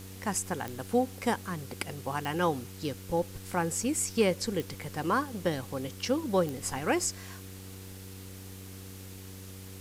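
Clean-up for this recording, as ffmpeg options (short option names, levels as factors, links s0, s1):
-af "adeclick=t=4,bandreject=f=95:t=h:w=4,bandreject=f=190:t=h:w=4,bandreject=f=285:t=h:w=4,bandreject=f=380:t=h:w=4,bandreject=f=475:t=h:w=4,afwtdn=0.0032"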